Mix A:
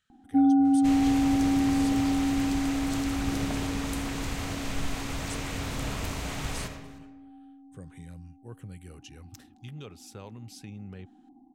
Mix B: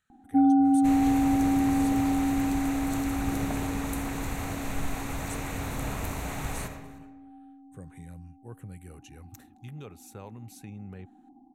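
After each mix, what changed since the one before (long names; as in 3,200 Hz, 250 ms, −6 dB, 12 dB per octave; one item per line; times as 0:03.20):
master: add thirty-one-band graphic EQ 800 Hz +4 dB, 3,150 Hz −8 dB, 5,000 Hz −12 dB, 12,500 Hz +7 dB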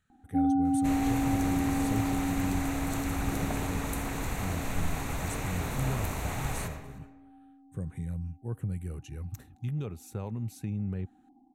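speech: add low-shelf EQ 380 Hz +11 dB
first sound −5.5 dB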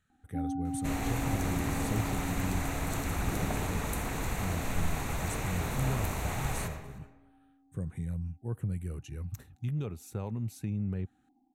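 first sound −9.0 dB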